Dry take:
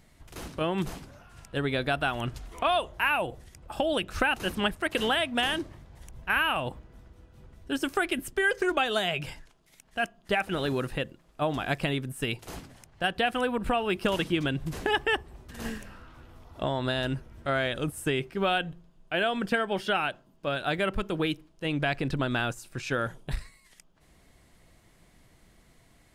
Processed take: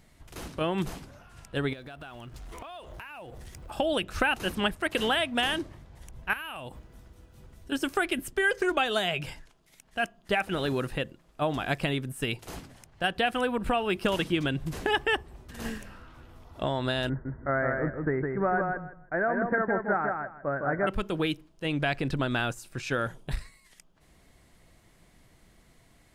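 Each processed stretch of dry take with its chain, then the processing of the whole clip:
1.73–3.71 G.711 law mismatch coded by mu + compressor 16:1, threshold -39 dBFS
6.33–7.72 high shelf 5100 Hz +9 dB + compressor 4:1, threshold -37 dBFS
17.09–20.87 steep low-pass 2000 Hz 96 dB/oct + feedback echo 0.16 s, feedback 20%, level -4 dB
whole clip: dry

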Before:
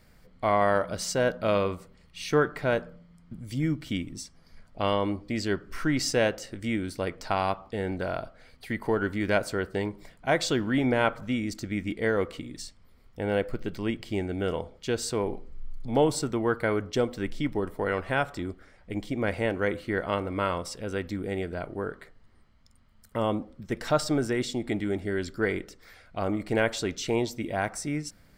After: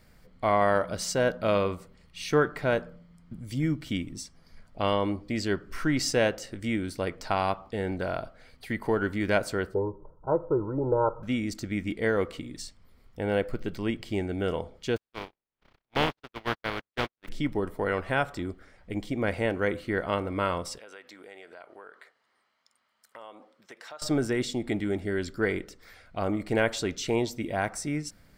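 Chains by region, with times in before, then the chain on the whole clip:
9.74–11.23 rippled Chebyshev low-pass 1300 Hz, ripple 3 dB + comb 2.1 ms, depth 80%
14.96–17.27 spectral contrast lowered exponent 0.23 + gate -27 dBFS, range -54 dB + air absorption 310 m
20.78–24.02 HPF 680 Hz + high shelf 10000 Hz -8 dB + compressor 3:1, threshold -45 dBFS
whole clip: dry

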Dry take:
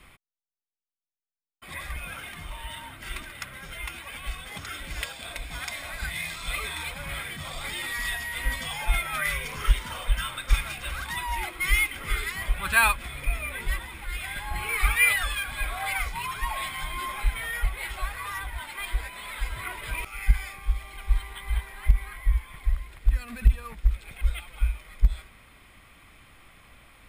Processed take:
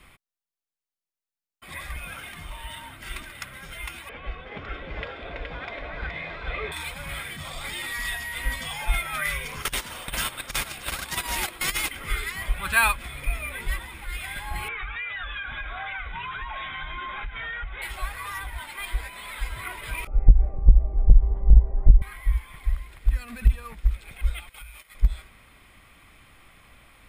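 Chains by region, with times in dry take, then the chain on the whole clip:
4.09–6.72 Bessel low-pass 2200 Hz, order 4 + bell 450 Hz +11 dB 0.98 oct + echo 0.421 s -4 dB
9.62–11.91 gate -32 dBFS, range -17 dB + negative-ratio compressor -24 dBFS, ratio -0.5 + spectral compressor 2:1
14.68–17.82 bell 1500 Hz +9 dB 0.24 oct + compressor 10:1, threshold -29 dBFS + brick-wall FIR low-pass 3900 Hz
20.07–22.02 tilt -4.5 dB/oct + compressor 8:1, threshold -6 dBFS + synth low-pass 580 Hz, resonance Q 2.9
24.49–24.95 gate -46 dBFS, range -11 dB + tilt +2.5 dB/oct + compressor 10:1, threshold -38 dBFS
whole clip: dry

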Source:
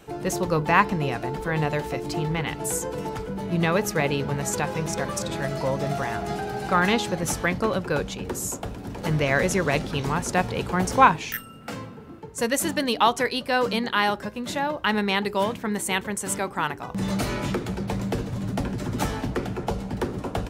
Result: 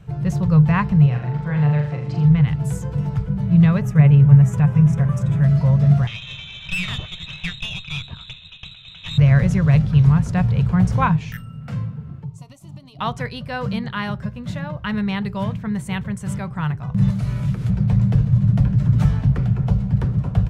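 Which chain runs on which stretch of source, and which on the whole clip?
1.06–2.25 HPF 230 Hz 6 dB/oct + air absorption 80 m + flutter echo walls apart 7 m, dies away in 0.51 s
3.81–5.44 bell 4400 Hz -14.5 dB 0.62 oct + comb 7 ms, depth 40%
6.07–9.18 bell 1300 Hz +14.5 dB 0.36 oct + inverted band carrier 3900 Hz + tube stage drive 16 dB, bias 0.45
12.24–12.99 fixed phaser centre 330 Hz, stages 8 + compressor 12:1, threshold -37 dBFS
17.1–17.7 delta modulation 64 kbps, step -32.5 dBFS + high shelf 10000 Hz +9 dB + compressor, threshold -28 dBFS
whole clip: LPF 2900 Hz 6 dB/oct; resonant low shelf 210 Hz +13.5 dB, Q 3; notch 840 Hz, Q 12; gain -3 dB

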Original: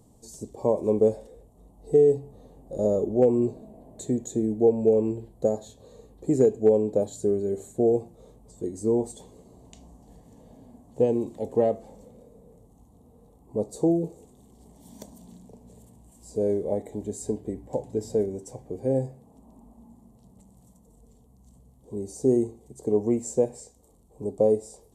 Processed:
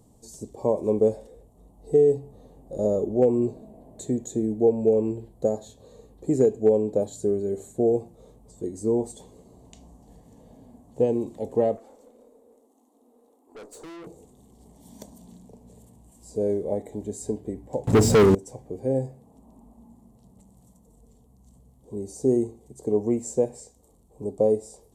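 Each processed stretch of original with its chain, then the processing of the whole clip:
11.77–14.07 steep high-pass 230 Hz 96 dB/oct + tube stage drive 40 dB, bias 0.45
17.87–18.35 sample leveller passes 5 + bell 140 Hz +6.5 dB 2.1 oct
whole clip: dry

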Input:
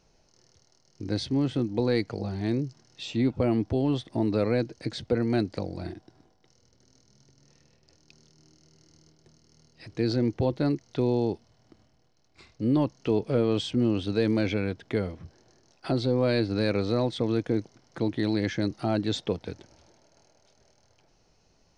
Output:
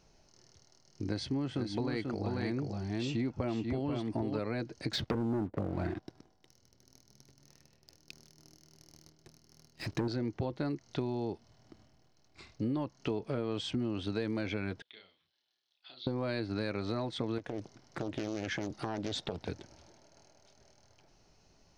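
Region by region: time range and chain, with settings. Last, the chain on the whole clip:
1.08–4.39 notch 3700 Hz, Q 11 + echo 0.488 s -4.5 dB
4.93–10.08 treble ducked by the level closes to 490 Hz, closed at -25.5 dBFS + sample leveller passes 2
14.82–16.07 band-pass 3500 Hz, Q 6 + air absorption 140 m + doubler 32 ms -3.5 dB
17.38–19.48 compressor 10:1, threshold -29 dBFS + Doppler distortion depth 0.58 ms
whole clip: notch 490 Hz, Q 12; dynamic EQ 1300 Hz, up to +5 dB, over -42 dBFS, Q 0.74; compressor, threshold -31 dBFS

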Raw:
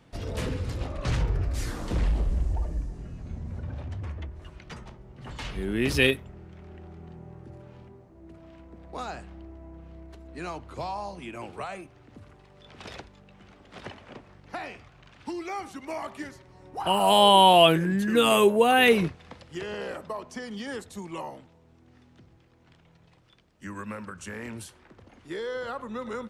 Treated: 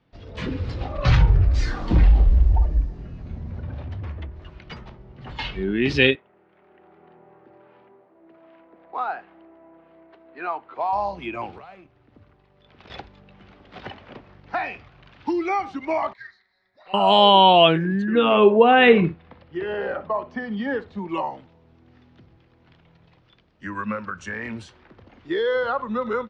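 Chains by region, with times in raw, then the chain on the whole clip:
6.15–10.93 dynamic EQ 570 Hz, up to -4 dB, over -58 dBFS, Q 6.3 + BPF 440–2400 Hz
11.58–12.9 G.711 law mismatch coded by A + high shelf 5100 Hz -6.5 dB + compressor 3:1, threshold -47 dBFS
16.13–16.94 double band-pass 3000 Hz, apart 0.98 oct + frequency shift -180 Hz + doubler 34 ms -11 dB
18.02–21.09 Bessel low-pass 2400 Hz + flutter echo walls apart 10.4 m, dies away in 0.25 s
whole clip: LPF 4700 Hz 24 dB/oct; spectral noise reduction 8 dB; AGC gain up to 12 dB; gain -1 dB

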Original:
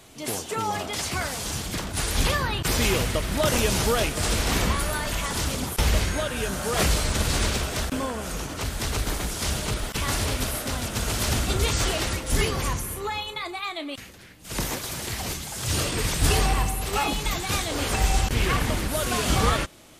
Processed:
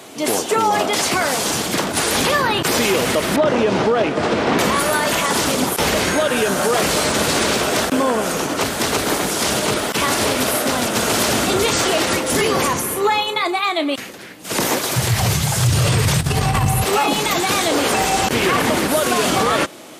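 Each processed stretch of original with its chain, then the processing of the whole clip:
3.36–4.59 HPF 73 Hz + tape spacing loss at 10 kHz 27 dB
14.96–16.84 resonant low shelf 180 Hz +14 dB, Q 3 + negative-ratio compressor -9 dBFS, ratio -0.5
whole clip: HPF 260 Hz 12 dB/oct; tilt shelf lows +3 dB, about 1300 Hz; maximiser +20 dB; gain -7 dB

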